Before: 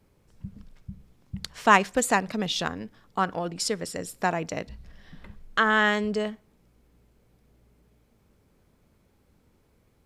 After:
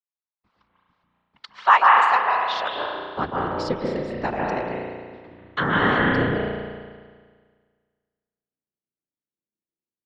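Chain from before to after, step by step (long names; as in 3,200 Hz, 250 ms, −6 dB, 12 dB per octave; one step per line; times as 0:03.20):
Chebyshev band-pass filter 110–4,400 Hz, order 3
noise gate −51 dBFS, range −40 dB
high-pass filter sweep 970 Hz → 240 Hz, 0:02.40–0:03.19
random phases in short frames
convolution reverb RT60 1.7 s, pre-delay 142 ms, DRR −3 dB
level −2 dB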